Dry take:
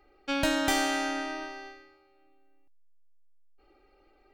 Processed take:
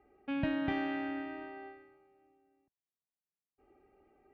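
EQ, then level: dynamic bell 770 Hz, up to -7 dB, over -42 dBFS, Q 0.73; cabinet simulation 140–2400 Hz, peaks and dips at 310 Hz -8 dB, 530 Hz -9 dB, 930 Hz -5 dB, 1.4 kHz -10 dB, 2.2 kHz -4 dB; tilt EQ -2.5 dB/octave; 0.0 dB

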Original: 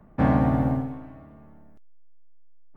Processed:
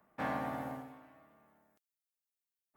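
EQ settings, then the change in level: differentiator; treble shelf 2.4 kHz -10.5 dB; +9.5 dB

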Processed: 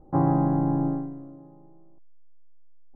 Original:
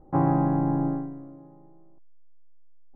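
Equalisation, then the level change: Bessel low-pass 1.7 kHz, order 2; distance through air 240 m; +1.0 dB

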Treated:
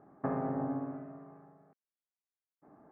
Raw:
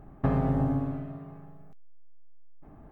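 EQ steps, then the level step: high-pass 260 Hz 12 dB/octave; low-pass 1.8 kHz 24 dB/octave; -3.5 dB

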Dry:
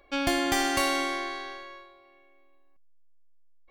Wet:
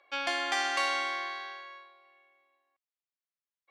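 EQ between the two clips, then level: high-pass 810 Hz 12 dB/octave; distance through air 100 m; 0.0 dB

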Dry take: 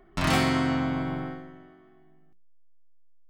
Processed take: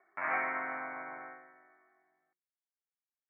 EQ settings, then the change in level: high-pass 1 kHz 12 dB/octave; rippled Chebyshev low-pass 2.3 kHz, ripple 3 dB; distance through air 160 m; 0.0 dB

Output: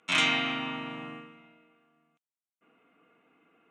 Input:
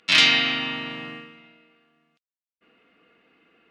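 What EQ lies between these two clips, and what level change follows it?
cabinet simulation 140–9900 Hz, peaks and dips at 210 Hz -5 dB, 370 Hz -5 dB, 530 Hz -6 dB, 1.8 kHz -10 dB, 2.8 kHz -5 dB, 4.9 kHz -9 dB; peaking EQ 4.4 kHz -14 dB 0.79 oct; 0.0 dB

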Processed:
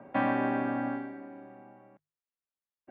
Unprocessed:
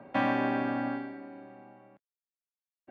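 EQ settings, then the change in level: low-pass 2.3 kHz 12 dB/octave; hum notches 50/100/150 Hz; 0.0 dB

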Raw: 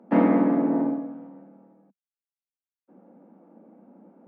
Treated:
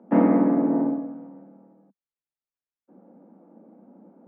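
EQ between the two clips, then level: distance through air 120 m; treble shelf 2.5 kHz -11.5 dB; +1.5 dB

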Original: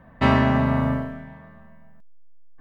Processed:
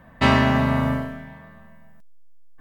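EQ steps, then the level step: treble shelf 2.8 kHz +11.5 dB; 0.0 dB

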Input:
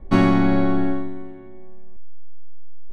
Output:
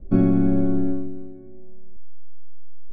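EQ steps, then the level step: boxcar filter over 45 samples; 0.0 dB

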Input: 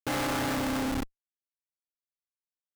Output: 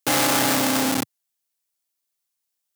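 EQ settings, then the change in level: high-pass 120 Hz 24 dB/octave; peaking EQ 720 Hz +2.5 dB 0.77 oct; treble shelf 3.5 kHz +12 dB; +6.5 dB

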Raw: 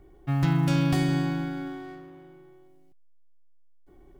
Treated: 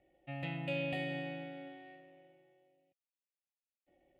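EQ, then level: vowel filter e; static phaser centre 1.6 kHz, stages 6; +9.0 dB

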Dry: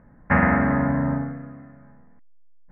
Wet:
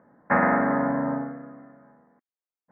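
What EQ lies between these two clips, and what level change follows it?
high-pass 330 Hz 12 dB/octave; low-pass 1.9 kHz 12 dB/octave; distance through air 500 m; +3.5 dB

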